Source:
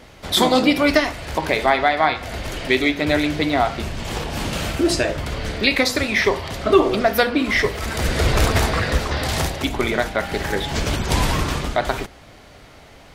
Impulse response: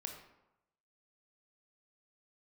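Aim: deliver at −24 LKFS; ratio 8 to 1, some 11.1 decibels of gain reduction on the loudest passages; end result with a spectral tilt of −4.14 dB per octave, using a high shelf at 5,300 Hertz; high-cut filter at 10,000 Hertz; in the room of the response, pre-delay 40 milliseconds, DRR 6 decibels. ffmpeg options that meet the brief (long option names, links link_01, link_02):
-filter_complex "[0:a]lowpass=10000,highshelf=frequency=5300:gain=4.5,acompressor=threshold=-20dB:ratio=8,asplit=2[link_01][link_02];[1:a]atrim=start_sample=2205,adelay=40[link_03];[link_02][link_03]afir=irnorm=-1:irlink=0,volume=-3.5dB[link_04];[link_01][link_04]amix=inputs=2:normalize=0"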